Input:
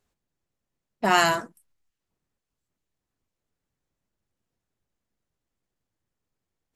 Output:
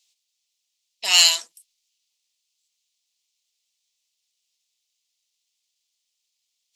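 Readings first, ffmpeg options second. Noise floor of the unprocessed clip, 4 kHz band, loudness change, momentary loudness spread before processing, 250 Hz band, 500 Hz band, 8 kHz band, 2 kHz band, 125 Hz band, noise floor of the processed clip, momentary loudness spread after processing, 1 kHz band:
-85 dBFS, +14.0 dB, +7.0 dB, 9 LU, under -25 dB, -14.0 dB, +14.5 dB, -0.5 dB, under -30 dB, -78 dBFS, 14 LU, -12.0 dB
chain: -filter_complex "[0:a]acrossover=split=490 6800:gain=0.0708 1 0.2[s0][s1][s2];[s0][s1][s2]amix=inputs=3:normalize=0,aexciter=amount=15.3:drive=9:freq=2500,volume=0.282"

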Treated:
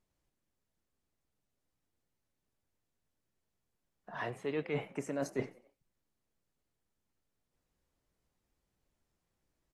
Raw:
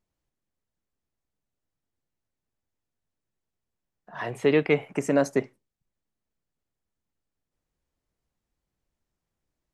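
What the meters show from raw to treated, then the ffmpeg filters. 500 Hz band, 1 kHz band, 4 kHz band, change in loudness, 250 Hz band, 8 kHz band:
-13.5 dB, -9.0 dB, -11.5 dB, -13.5 dB, -13.0 dB, -10.0 dB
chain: -filter_complex "[0:a]areverse,acompressor=threshold=0.0251:ratio=12,areverse,asplit=4[s0][s1][s2][s3];[s1]adelay=91,afreqshift=52,volume=0.0794[s4];[s2]adelay=182,afreqshift=104,volume=0.0372[s5];[s3]adelay=273,afreqshift=156,volume=0.0176[s6];[s0][s4][s5][s6]amix=inputs=4:normalize=0" -ar 32000 -c:a aac -b:a 48k

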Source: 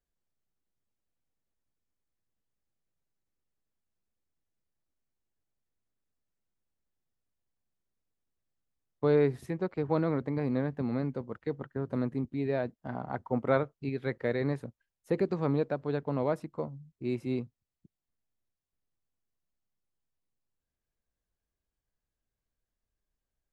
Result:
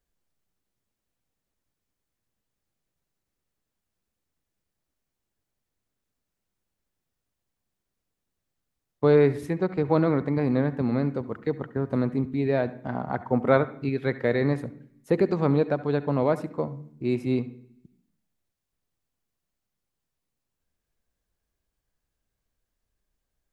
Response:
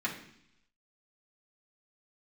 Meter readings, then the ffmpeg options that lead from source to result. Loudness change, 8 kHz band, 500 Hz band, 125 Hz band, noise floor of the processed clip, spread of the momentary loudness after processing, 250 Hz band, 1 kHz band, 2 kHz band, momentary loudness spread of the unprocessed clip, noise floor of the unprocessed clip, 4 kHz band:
+6.5 dB, no reading, +6.5 dB, +6.5 dB, -84 dBFS, 9 LU, +6.5 dB, +6.5 dB, +7.0 dB, 9 LU, under -85 dBFS, +6.5 dB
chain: -filter_complex "[0:a]asplit=2[s0][s1];[1:a]atrim=start_sample=2205,adelay=67[s2];[s1][s2]afir=irnorm=-1:irlink=0,volume=0.1[s3];[s0][s3]amix=inputs=2:normalize=0,volume=2.11"

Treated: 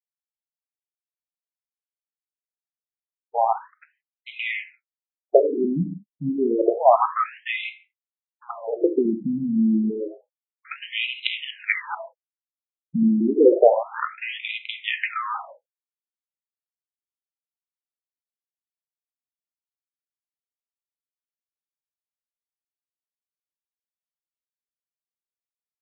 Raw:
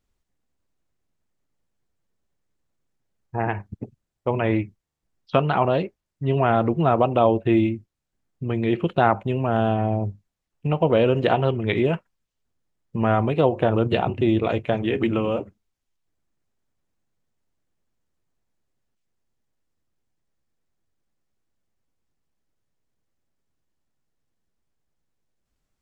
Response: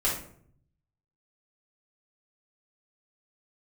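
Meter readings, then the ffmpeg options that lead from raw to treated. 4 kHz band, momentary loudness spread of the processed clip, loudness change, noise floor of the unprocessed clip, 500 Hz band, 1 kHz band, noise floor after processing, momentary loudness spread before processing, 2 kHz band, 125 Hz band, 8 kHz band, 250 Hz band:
+4.0 dB, 15 LU, -0.5 dB, -81 dBFS, -0.5 dB, -1.0 dB, under -85 dBFS, 13 LU, +2.5 dB, -13.5 dB, no reading, -0.5 dB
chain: -filter_complex "[0:a]aeval=exprs='sgn(val(0))*max(abs(val(0))-0.0112,0)':c=same,asplit=2[s0][s1];[1:a]atrim=start_sample=2205,afade=t=out:st=0.22:d=0.01,atrim=end_sample=10143[s2];[s1][s2]afir=irnorm=-1:irlink=0,volume=0.158[s3];[s0][s3]amix=inputs=2:normalize=0,afftfilt=real='re*between(b*sr/1024,210*pow(2900/210,0.5+0.5*sin(2*PI*0.29*pts/sr))/1.41,210*pow(2900/210,0.5+0.5*sin(2*PI*0.29*pts/sr))*1.41)':imag='im*between(b*sr/1024,210*pow(2900/210,0.5+0.5*sin(2*PI*0.29*pts/sr))/1.41,210*pow(2900/210,0.5+0.5*sin(2*PI*0.29*pts/sr))*1.41)':win_size=1024:overlap=0.75,volume=2.24"

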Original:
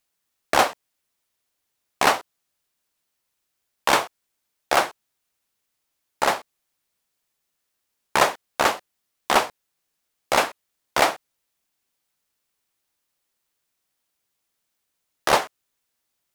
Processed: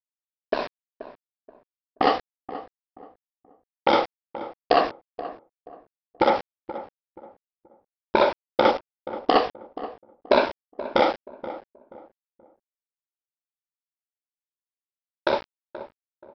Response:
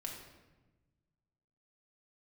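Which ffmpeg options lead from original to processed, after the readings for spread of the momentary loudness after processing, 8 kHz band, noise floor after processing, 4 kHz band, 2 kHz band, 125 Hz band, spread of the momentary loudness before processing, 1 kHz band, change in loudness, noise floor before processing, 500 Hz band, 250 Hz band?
17 LU, under -25 dB, under -85 dBFS, -5.0 dB, -6.5 dB, -2.0 dB, 10 LU, -1.5 dB, -2.5 dB, -78 dBFS, +3.5 dB, +5.5 dB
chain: -filter_complex "[0:a]afftfilt=real='re*pow(10,12/40*sin(2*PI*(1.5*log(max(b,1)*sr/1024/100)/log(2)-(-0.42)*(pts-256)/sr)))':imag='im*pow(10,12/40*sin(2*PI*(1.5*log(max(b,1)*sr/1024/100)/log(2)-(-0.42)*(pts-256)/sr)))':win_size=1024:overlap=0.75,afwtdn=0.0251,aeval=exprs='val(0)+0.00158*(sin(2*PI*50*n/s)+sin(2*PI*2*50*n/s)/2+sin(2*PI*3*50*n/s)/3+sin(2*PI*4*50*n/s)/4+sin(2*PI*5*50*n/s)/5)':c=same,equalizer=f=140:t=o:w=0.62:g=-7,acompressor=threshold=0.02:ratio=10,equalizer=f=250:t=o:w=1:g=9,equalizer=f=500:t=o:w=1:g=7,equalizer=f=2000:t=o:w=1:g=-4,dynaudnorm=f=210:g=17:m=5.96,aresample=11025,aeval=exprs='val(0)*gte(abs(val(0)),0.0158)':c=same,aresample=44100,alimiter=limit=0.266:level=0:latency=1:release=72,asplit=2[s0][s1];[s1]adelay=479,lowpass=f=1000:p=1,volume=0.224,asplit=2[s2][s3];[s3]adelay=479,lowpass=f=1000:p=1,volume=0.33,asplit=2[s4][s5];[s5]adelay=479,lowpass=f=1000:p=1,volume=0.33[s6];[s0][s2][s4][s6]amix=inputs=4:normalize=0,volume=1.88"

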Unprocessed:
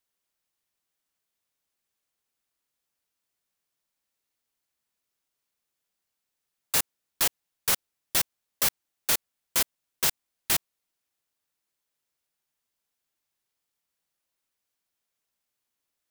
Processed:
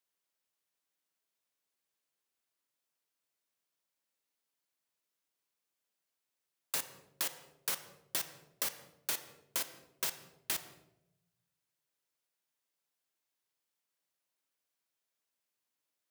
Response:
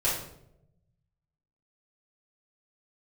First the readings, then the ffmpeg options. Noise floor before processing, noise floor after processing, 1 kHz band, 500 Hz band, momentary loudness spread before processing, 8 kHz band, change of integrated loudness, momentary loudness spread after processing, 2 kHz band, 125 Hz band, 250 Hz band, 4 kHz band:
-84 dBFS, under -85 dBFS, -10.0 dB, -9.5 dB, 5 LU, -10.5 dB, -11.0 dB, 5 LU, -10.0 dB, -14.0 dB, -11.0 dB, -10.5 dB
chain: -filter_complex "[0:a]highpass=160,asplit=2[s0][s1];[1:a]atrim=start_sample=2205,highshelf=f=8700:g=-7[s2];[s1][s2]afir=irnorm=-1:irlink=0,volume=0.126[s3];[s0][s3]amix=inputs=2:normalize=0,acompressor=threshold=0.0447:ratio=6,volume=0.562"

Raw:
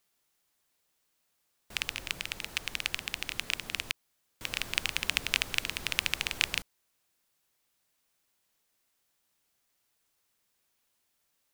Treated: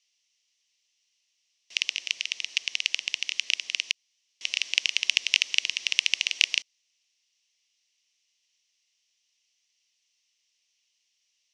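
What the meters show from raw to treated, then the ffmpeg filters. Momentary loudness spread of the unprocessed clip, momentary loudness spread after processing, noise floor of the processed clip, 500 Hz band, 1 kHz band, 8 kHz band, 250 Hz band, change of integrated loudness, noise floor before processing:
7 LU, 7 LU, -75 dBFS, under -10 dB, under -10 dB, +6.0 dB, under -15 dB, +6.5 dB, -77 dBFS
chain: -af "highpass=480,equalizer=f=500:t=q:w=4:g=-5,equalizer=f=840:t=q:w=4:g=-7,equalizer=f=1400:t=q:w=4:g=-8,equalizer=f=2000:t=q:w=4:g=5,equalizer=f=2900:t=q:w=4:g=7,equalizer=f=5800:t=q:w=4:g=9,lowpass=f=5800:w=0.5412,lowpass=f=5800:w=1.3066,aexciter=amount=5.6:drive=2:freq=2200,volume=0.355"

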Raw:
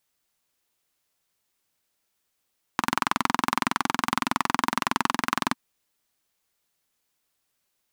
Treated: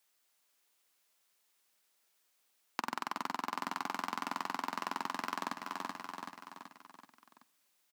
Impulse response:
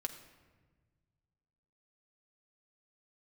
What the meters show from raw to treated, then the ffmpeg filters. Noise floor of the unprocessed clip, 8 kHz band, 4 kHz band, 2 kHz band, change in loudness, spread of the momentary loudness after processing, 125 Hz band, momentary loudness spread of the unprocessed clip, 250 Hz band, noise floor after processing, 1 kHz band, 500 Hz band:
-77 dBFS, -14.5 dB, -13.0 dB, -13.0 dB, -13.0 dB, 13 LU, -18.0 dB, 5 LU, -14.5 dB, -75 dBFS, -11.0 dB, -10.0 dB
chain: -filter_complex "[0:a]acrossover=split=770[s0][s1];[s0]aemphasis=mode=production:type=riaa[s2];[s1]asoftclip=type=tanh:threshold=0.106[s3];[s2][s3]amix=inputs=2:normalize=0,aecho=1:1:380|760|1140|1520|1900:0.316|0.158|0.0791|0.0395|0.0198,asplit=2[s4][s5];[1:a]atrim=start_sample=2205[s6];[s5][s6]afir=irnorm=-1:irlink=0,volume=0.299[s7];[s4][s7]amix=inputs=2:normalize=0,acompressor=threshold=0.0224:ratio=4,highpass=f=110:w=0.5412,highpass=f=110:w=1.3066,volume=0.891"

